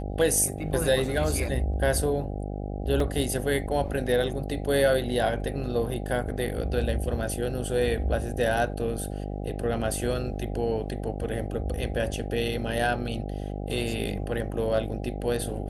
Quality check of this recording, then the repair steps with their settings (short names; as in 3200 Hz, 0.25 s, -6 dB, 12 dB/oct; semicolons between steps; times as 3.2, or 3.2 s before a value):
buzz 50 Hz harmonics 16 -33 dBFS
3 gap 2.8 ms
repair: de-hum 50 Hz, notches 16; interpolate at 3, 2.8 ms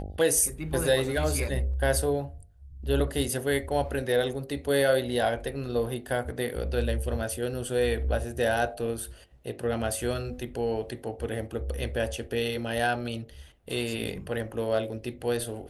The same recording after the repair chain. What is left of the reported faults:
none